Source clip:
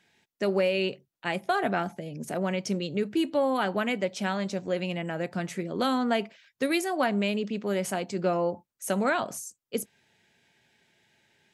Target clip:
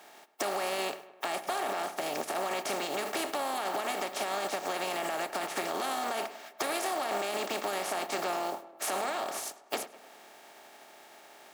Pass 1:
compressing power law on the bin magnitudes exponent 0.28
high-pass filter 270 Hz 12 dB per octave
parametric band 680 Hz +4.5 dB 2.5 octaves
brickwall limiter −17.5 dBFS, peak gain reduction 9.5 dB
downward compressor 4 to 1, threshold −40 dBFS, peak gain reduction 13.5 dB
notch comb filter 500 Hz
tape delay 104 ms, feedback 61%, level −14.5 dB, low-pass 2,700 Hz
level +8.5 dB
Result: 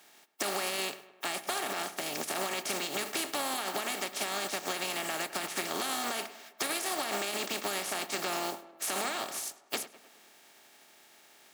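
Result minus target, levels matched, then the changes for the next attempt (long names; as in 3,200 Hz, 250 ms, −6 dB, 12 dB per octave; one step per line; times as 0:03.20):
500 Hz band −4.0 dB
change: parametric band 680 Hz +16 dB 2.5 octaves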